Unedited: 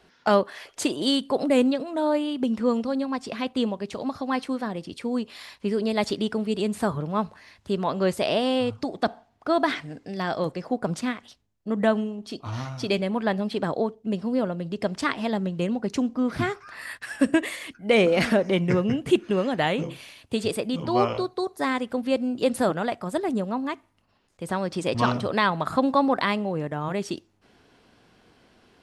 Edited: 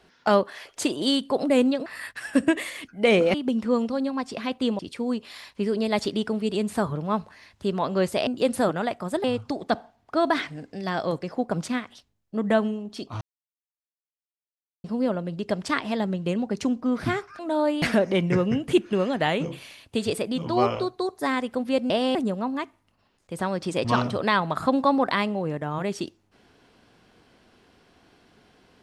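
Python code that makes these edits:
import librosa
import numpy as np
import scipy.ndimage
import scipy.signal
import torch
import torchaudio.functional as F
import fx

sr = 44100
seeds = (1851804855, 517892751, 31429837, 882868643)

y = fx.edit(x, sr, fx.swap(start_s=1.86, length_s=0.43, other_s=16.72, other_length_s=1.48),
    fx.cut(start_s=3.74, length_s=1.1),
    fx.swap(start_s=8.32, length_s=0.25, other_s=22.28, other_length_s=0.97),
    fx.silence(start_s=12.54, length_s=1.63), tone=tone)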